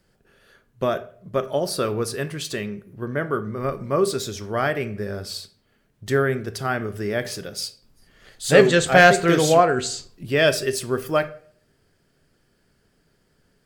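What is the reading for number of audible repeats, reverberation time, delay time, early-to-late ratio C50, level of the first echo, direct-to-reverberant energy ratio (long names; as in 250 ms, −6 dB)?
no echo audible, 0.50 s, no echo audible, 16.5 dB, no echo audible, 11.0 dB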